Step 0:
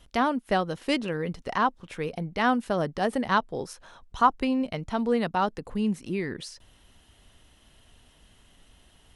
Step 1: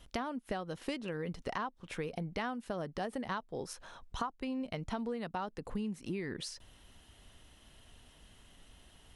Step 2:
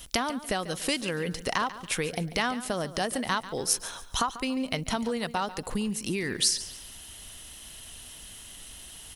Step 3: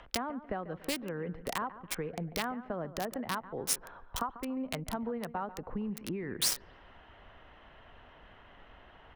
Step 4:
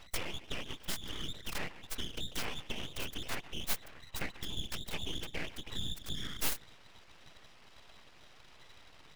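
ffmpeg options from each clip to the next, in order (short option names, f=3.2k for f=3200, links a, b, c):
-af "acompressor=threshold=-32dB:ratio=20,volume=-1.5dB"
-af "crystalizer=i=5:c=0,aecho=1:1:142|284|426:0.178|0.0622|0.0218,volume=6.5dB"
-filter_complex "[0:a]acrossover=split=250|410|1800[a][b][c][d];[c]acompressor=mode=upward:threshold=-41dB:ratio=2.5[e];[d]acrusher=bits=3:mix=0:aa=0.000001[f];[a][b][e][f]amix=inputs=4:normalize=0,volume=-6dB"
-af "afftfilt=real='real(if(between(b,1,1012),(2*floor((b-1)/92)+1)*92-b,b),0)':imag='imag(if(between(b,1,1012),(2*floor((b-1)/92)+1)*92-b,b),0)*if(between(b,1,1012),-1,1)':win_size=2048:overlap=0.75,afftfilt=real='hypot(re,im)*cos(2*PI*random(0))':imag='hypot(re,im)*sin(2*PI*random(1))':win_size=512:overlap=0.75,aeval=exprs='abs(val(0))':c=same,volume=5.5dB"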